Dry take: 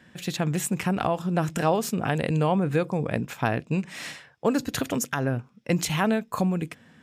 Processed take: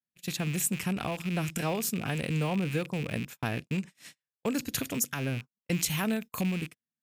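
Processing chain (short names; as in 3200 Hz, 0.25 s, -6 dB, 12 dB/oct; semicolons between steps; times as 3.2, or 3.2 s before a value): rattling part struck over -38 dBFS, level -24 dBFS; EQ curve 220 Hz 0 dB, 780 Hz -6 dB, 7100 Hz +5 dB, 13000 Hz +10 dB; gate -33 dBFS, range -41 dB; 5.88–6.41 high shelf 12000 Hz +8.5 dB; gain -5 dB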